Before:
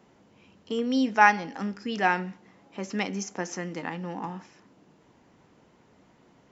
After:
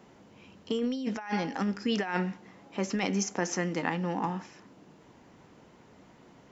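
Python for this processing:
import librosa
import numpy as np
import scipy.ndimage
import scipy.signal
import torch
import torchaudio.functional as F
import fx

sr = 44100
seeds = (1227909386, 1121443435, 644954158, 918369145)

y = fx.over_compress(x, sr, threshold_db=-30.0, ratio=-1.0)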